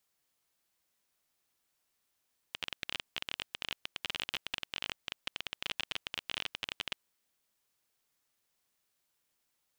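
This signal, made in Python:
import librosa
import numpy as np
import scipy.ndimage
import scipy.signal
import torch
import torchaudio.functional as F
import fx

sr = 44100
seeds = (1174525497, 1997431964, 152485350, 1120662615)

y = fx.geiger_clicks(sr, seeds[0], length_s=4.44, per_s=23.0, level_db=-17.5)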